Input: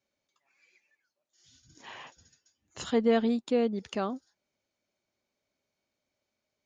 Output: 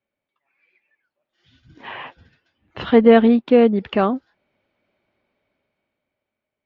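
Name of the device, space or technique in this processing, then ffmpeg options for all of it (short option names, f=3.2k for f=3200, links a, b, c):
action camera in a waterproof case: -filter_complex "[0:a]asettb=1/sr,asplit=3[a][b][c];[a]atrim=end=1.924[d];[b]atrim=start=1.92:end=3.9,asetpts=PTS-STARTPTS,afade=t=in:d=0.004:c=qsin,afade=t=out:st=1.976:d=0.004:c=qsin,lowpass=f=5.7k:w=0.5412,lowpass=f=5.7k:w=1.3066[e];[c]atrim=start=3.896[f];[d][e]acrossfade=d=0.004:c1=hsin:c2=qsin[g];[g][f]acrossfade=d=0.004:c1=qsin:c2=hsin,lowpass=f=3k:w=0.5412,lowpass=f=3k:w=1.3066,dynaudnorm=f=260:g=11:m=15dB,volume=1dB" -ar 48000 -c:a aac -b:a 48k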